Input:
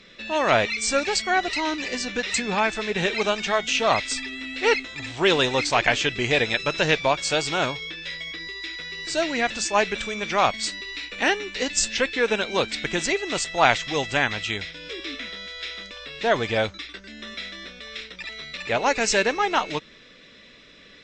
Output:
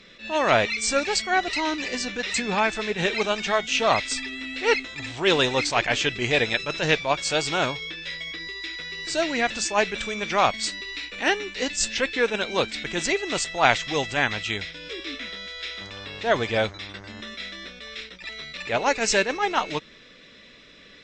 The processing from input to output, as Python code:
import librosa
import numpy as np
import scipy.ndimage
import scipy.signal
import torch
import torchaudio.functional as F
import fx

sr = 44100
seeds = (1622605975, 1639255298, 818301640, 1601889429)

y = fx.dmg_buzz(x, sr, base_hz=100.0, harmonics=22, level_db=-44.0, tilt_db=-4, odd_only=False, at=(15.8, 17.2), fade=0.02)
y = fx.attack_slew(y, sr, db_per_s=190.0)